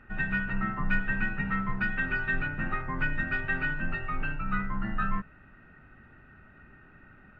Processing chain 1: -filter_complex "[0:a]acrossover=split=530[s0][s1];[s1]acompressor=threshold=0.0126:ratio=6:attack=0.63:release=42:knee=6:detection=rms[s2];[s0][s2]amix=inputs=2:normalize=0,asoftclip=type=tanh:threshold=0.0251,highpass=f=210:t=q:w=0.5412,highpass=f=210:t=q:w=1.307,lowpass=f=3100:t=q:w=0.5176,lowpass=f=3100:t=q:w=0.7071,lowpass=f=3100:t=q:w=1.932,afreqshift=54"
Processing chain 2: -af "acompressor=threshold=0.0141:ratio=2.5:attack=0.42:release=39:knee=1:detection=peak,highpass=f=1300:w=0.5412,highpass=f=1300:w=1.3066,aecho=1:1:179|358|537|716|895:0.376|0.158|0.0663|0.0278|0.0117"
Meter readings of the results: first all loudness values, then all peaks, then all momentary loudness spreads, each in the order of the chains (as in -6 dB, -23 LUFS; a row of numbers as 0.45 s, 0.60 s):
-43.0 LUFS, -41.0 LUFS; -29.5 dBFS, -28.5 dBFS; 15 LU, 18 LU